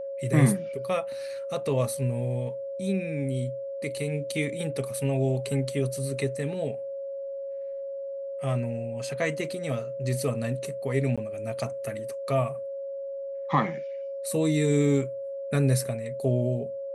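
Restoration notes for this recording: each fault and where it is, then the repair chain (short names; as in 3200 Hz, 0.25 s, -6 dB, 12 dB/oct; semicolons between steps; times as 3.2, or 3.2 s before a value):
tone 550 Hz -32 dBFS
11.16–11.18 gap 16 ms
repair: notch 550 Hz, Q 30; interpolate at 11.16, 16 ms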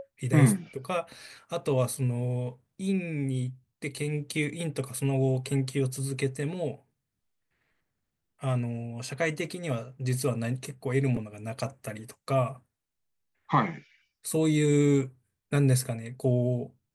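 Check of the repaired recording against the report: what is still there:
none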